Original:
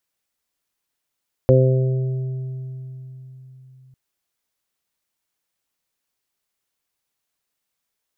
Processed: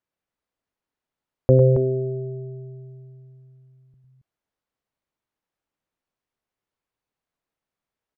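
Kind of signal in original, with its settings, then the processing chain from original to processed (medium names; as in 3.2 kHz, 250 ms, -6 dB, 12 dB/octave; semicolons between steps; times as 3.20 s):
additive tone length 2.45 s, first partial 130 Hz, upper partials -8/-4.5/0.5/-19 dB, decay 4.20 s, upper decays 1.00/2.18/1.02/2.35 s, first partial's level -12 dB
low-pass 1 kHz 6 dB/octave; on a send: loudspeakers at several distances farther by 35 m -8 dB, 94 m -7 dB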